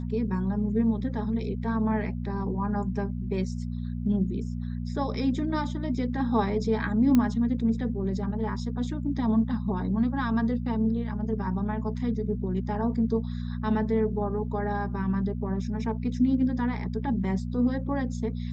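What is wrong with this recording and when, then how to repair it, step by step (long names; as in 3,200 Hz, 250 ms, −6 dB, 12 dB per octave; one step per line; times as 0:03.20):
mains hum 60 Hz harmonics 4 −32 dBFS
0:07.15: click −11 dBFS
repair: click removal
hum removal 60 Hz, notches 4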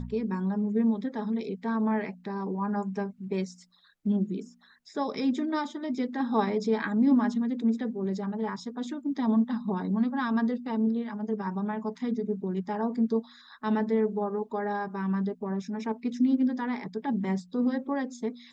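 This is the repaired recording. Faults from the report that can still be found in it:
0:07.15: click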